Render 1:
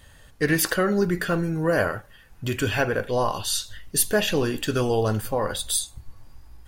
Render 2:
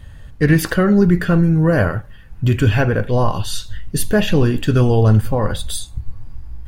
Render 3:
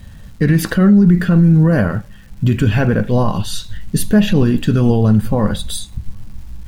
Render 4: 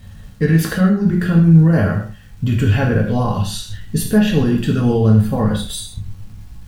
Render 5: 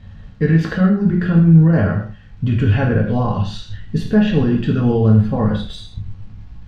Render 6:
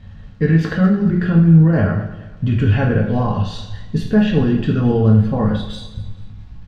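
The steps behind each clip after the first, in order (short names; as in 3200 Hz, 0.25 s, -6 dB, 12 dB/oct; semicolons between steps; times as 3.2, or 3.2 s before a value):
tone controls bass +12 dB, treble -7 dB; gain +3.5 dB
small resonant body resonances 200/3900 Hz, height 11 dB, ringing for 45 ms; crackle 550/s -40 dBFS; limiter -4 dBFS, peak gain reduction 8.5 dB
non-linear reverb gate 0.18 s falling, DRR -0.5 dB; gain -4.5 dB
air absorption 190 m
feedback echo 0.219 s, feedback 34%, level -16 dB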